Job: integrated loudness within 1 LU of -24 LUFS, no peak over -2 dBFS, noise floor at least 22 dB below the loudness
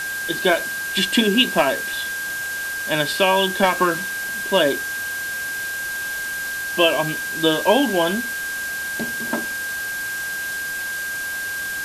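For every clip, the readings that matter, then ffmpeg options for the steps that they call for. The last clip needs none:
steady tone 1.6 kHz; tone level -25 dBFS; noise floor -27 dBFS; noise floor target -43 dBFS; loudness -21.0 LUFS; peak level -3.0 dBFS; loudness target -24.0 LUFS
-> -af "bandreject=f=1600:w=30"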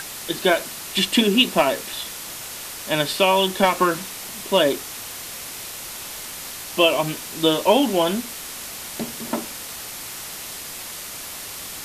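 steady tone not found; noise floor -35 dBFS; noise floor target -45 dBFS
-> -af "afftdn=nr=10:nf=-35"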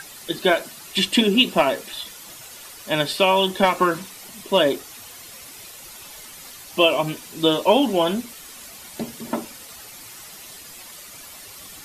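noise floor -41 dBFS; noise floor target -43 dBFS
-> -af "afftdn=nr=6:nf=-41"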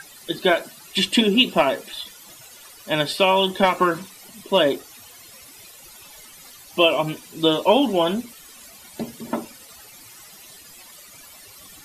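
noise floor -45 dBFS; loudness -20.5 LUFS; peak level -3.5 dBFS; loudness target -24.0 LUFS
-> -af "volume=0.668"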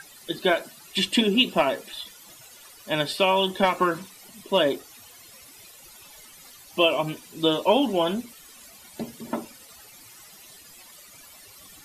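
loudness -24.0 LUFS; peak level -7.0 dBFS; noise floor -49 dBFS

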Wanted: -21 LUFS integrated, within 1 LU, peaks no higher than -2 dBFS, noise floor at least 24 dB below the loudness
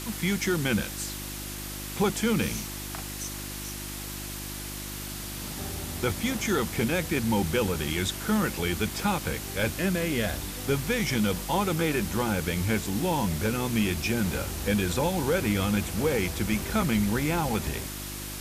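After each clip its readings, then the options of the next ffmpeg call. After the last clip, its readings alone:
hum 50 Hz; highest harmonic 350 Hz; hum level -37 dBFS; noise floor -37 dBFS; noise floor target -53 dBFS; loudness -28.5 LUFS; peak level -13.5 dBFS; loudness target -21.0 LUFS
-> -af "bandreject=f=50:t=h:w=4,bandreject=f=100:t=h:w=4,bandreject=f=150:t=h:w=4,bandreject=f=200:t=h:w=4,bandreject=f=250:t=h:w=4,bandreject=f=300:t=h:w=4,bandreject=f=350:t=h:w=4"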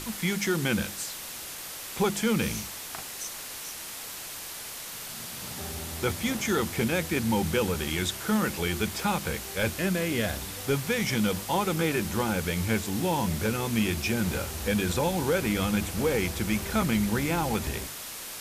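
hum not found; noise floor -39 dBFS; noise floor target -53 dBFS
-> -af "afftdn=nr=14:nf=-39"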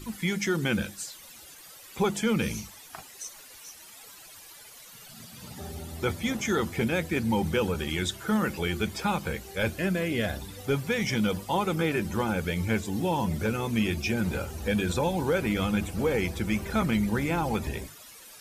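noise floor -49 dBFS; noise floor target -53 dBFS
-> -af "afftdn=nr=6:nf=-49"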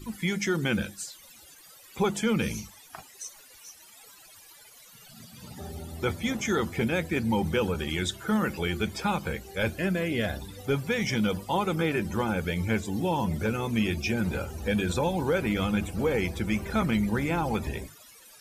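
noise floor -53 dBFS; loudness -28.5 LUFS; peak level -14.5 dBFS; loudness target -21.0 LUFS
-> -af "volume=2.37"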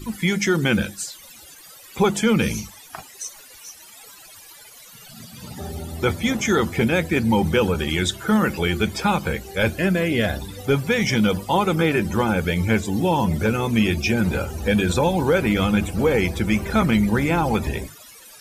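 loudness -21.0 LUFS; peak level -7.0 dBFS; noise floor -45 dBFS

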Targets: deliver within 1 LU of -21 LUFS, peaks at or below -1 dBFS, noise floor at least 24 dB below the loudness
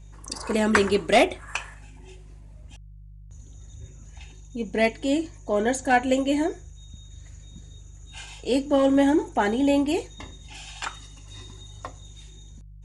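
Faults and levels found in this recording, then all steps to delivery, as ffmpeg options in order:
hum 50 Hz; highest harmonic 150 Hz; hum level -43 dBFS; loudness -23.5 LUFS; peak level -6.5 dBFS; loudness target -21.0 LUFS
-> -af "bandreject=f=50:t=h:w=4,bandreject=f=100:t=h:w=4,bandreject=f=150:t=h:w=4"
-af "volume=1.33"

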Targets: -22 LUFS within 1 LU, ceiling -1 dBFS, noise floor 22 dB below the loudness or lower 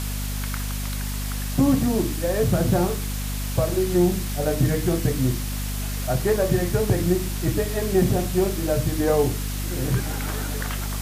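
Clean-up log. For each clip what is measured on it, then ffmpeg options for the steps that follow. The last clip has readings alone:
hum 50 Hz; highest harmonic 250 Hz; hum level -26 dBFS; noise floor -28 dBFS; noise floor target -46 dBFS; loudness -23.5 LUFS; peak level -7.0 dBFS; loudness target -22.0 LUFS
-> -af "bandreject=f=50:t=h:w=6,bandreject=f=100:t=h:w=6,bandreject=f=150:t=h:w=6,bandreject=f=200:t=h:w=6,bandreject=f=250:t=h:w=6"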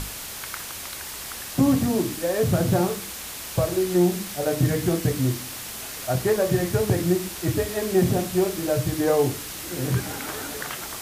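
hum not found; noise floor -36 dBFS; noise floor target -47 dBFS
-> -af "afftdn=nr=11:nf=-36"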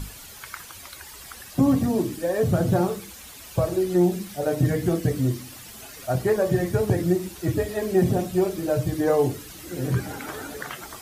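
noise floor -43 dBFS; noise floor target -47 dBFS
-> -af "afftdn=nr=6:nf=-43"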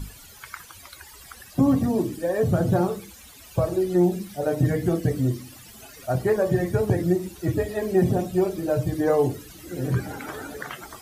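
noise floor -47 dBFS; loudness -24.0 LUFS; peak level -7.5 dBFS; loudness target -22.0 LUFS
-> -af "volume=1.26"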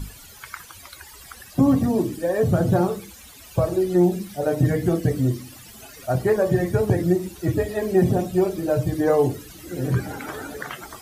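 loudness -22.0 LUFS; peak level -5.5 dBFS; noise floor -45 dBFS

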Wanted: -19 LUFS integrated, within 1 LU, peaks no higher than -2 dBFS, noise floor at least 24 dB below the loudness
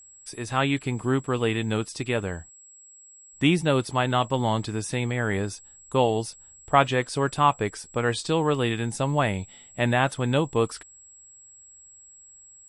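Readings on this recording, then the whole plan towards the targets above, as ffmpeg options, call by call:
steady tone 7.7 kHz; tone level -48 dBFS; loudness -25.5 LUFS; peak level -5.5 dBFS; loudness target -19.0 LUFS
-> -af "bandreject=f=7700:w=30"
-af "volume=2.11,alimiter=limit=0.794:level=0:latency=1"

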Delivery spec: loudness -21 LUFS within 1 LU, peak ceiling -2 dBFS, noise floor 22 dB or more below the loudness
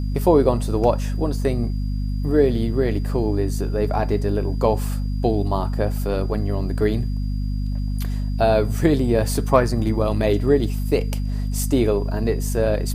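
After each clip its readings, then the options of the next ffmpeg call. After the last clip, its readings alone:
hum 50 Hz; highest harmonic 250 Hz; hum level -21 dBFS; steady tone 4.8 kHz; tone level -50 dBFS; loudness -21.5 LUFS; peak level -1.5 dBFS; loudness target -21.0 LUFS
-> -af "bandreject=f=50:t=h:w=6,bandreject=f=100:t=h:w=6,bandreject=f=150:t=h:w=6,bandreject=f=200:t=h:w=6,bandreject=f=250:t=h:w=6"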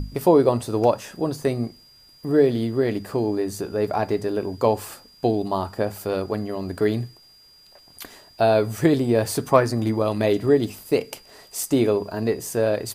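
hum not found; steady tone 4.8 kHz; tone level -50 dBFS
-> -af "bandreject=f=4800:w=30"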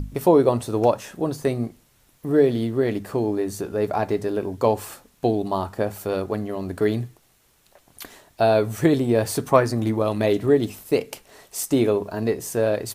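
steady tone not found; loudness -22.5 LUFS; peak level -2.0 dBFS; loudness target -21.0 LUFS
-> -af "volume=1.19,alimiter=limit=0.794:level=0:latency=1"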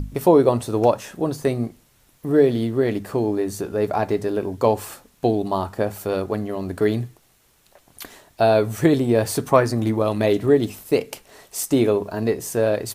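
loudness -21.0 LUFS; peak level -2.0 dBFS; noise floor -59 dBFS

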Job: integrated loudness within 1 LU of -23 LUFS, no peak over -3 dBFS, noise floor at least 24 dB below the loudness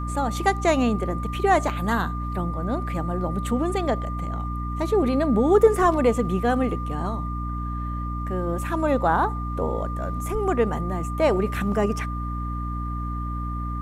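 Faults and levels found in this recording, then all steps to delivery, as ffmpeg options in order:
hum 60 Hz; highest harmonic 300 Hz; hum level -27 dBFS; steady tone 1.2 kHz; tone level -33 dBFS; loudness -24.5 LUFS; peak level -5.0 dBFS; loudness target -23.0 LUFS
-> -af "bandreject=f=60:t=h:w=6,bandreject=f=120:t=h:w=6,bandreject=f=180:t=h:w=6,bandreject=f=240:t=h:w=6,bandreject=f=300:t=h:w=6"
-af "bandreject=f=1200:w=30"
-af "volume=1.19"

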